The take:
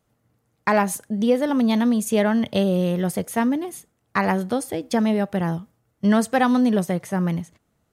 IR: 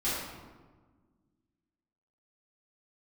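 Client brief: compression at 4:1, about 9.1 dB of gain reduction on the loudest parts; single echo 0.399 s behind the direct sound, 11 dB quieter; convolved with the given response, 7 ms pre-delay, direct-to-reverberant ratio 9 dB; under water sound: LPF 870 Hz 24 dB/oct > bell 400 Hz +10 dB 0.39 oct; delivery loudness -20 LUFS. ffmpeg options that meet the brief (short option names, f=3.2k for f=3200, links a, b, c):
-filter_complex "[0:a]acompressor=threshold=-25dB:ratio=4,aecho=1:1:399:0.282,asplit=2[a][b];[1:a]atrim=start_sample=2205,adelay=7[c];[b][c]afir=irnorm=-1:irlink=0,volume=-17.5dB[d];[a][d]amix=inputs=2:normalize=0,lowpass=f=870:w=0.5412,lowpass=f=870:w=1.3066,equalizer=f=400:t=o:w=0.39:g=10,volume=6.5dB"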